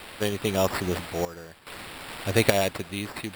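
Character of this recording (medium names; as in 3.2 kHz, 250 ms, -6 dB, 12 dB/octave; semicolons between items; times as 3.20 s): a quantiser's noise floor 8-bit, dither triangular; random-step tremolo 2.4 Hz, depth 85%; aliases and images of a low sample rate 6.3 kHz, jitter 0%; AAC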